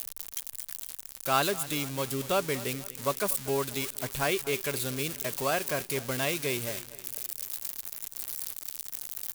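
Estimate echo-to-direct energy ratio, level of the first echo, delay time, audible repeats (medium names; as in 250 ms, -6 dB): -16.5 dB, -17.5 dB, 240 ms, 3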